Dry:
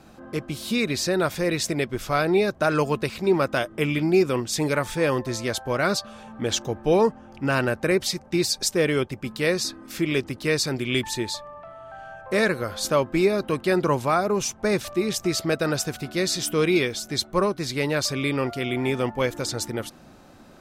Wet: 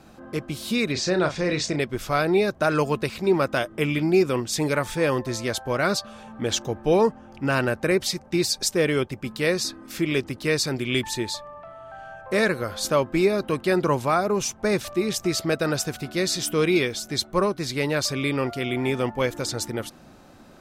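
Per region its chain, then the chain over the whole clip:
0:00.92–0:01.80: low-pass filter 6,900 Hz 24 dB per octave + double-tracking delay 33 ms −8 dB
whole clip: no processing

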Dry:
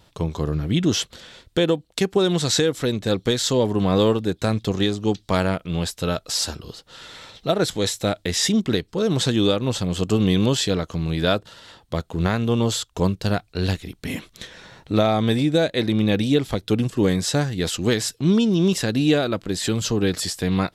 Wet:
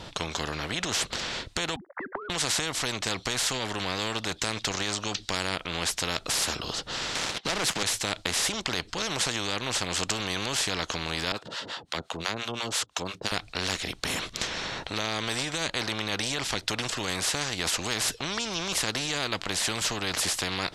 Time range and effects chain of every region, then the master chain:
0:01.76–0:02.30: three sine waves on the formant tracks + Butterworth low-pass 2,000 Hz 96 dB per octave + downward compressor, threshold −31 dBFS
0:07.15–0:07.83: high-pass filter 160 Hz 24 dB per octave + high-shelf EQ 5,600 Hz −11.5 dB + leveller curve on the samples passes 3
0:11.32–0:13.32: high-pass filter 170 Hz + two-band tremolo in antiphase 5.8 Hz, depth 100%, crossover 670 Hz
whole clip: low-pass filter 6,600 Hz 12 dB per octave; brickwall limiter −13 dBFS; every bin compressed towards the loudest bin 4 to 1; level +3.5 dB

